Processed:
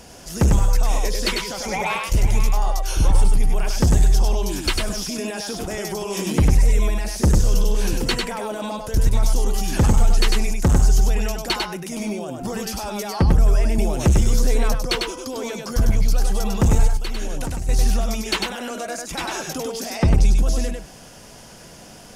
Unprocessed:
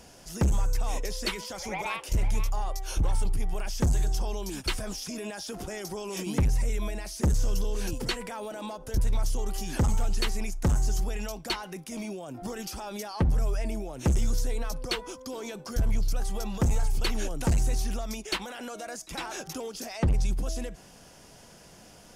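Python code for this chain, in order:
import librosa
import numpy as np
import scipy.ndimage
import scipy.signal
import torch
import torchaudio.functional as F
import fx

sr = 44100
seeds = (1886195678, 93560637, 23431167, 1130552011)

y = fx.level_steps(x, sr, step_db=17, at=(16.87, 17.69))
y = y + 10.0 ** (-3.5 / 20.0) * np.pad(y, (int(99 * sr / 1000.0), 0))[:len(y)]
y = fx.band_squash(y, sr, depth_pct=70, at=(13.78, 14.75))
y = y * 10.0 ** (7.5 / 20.0)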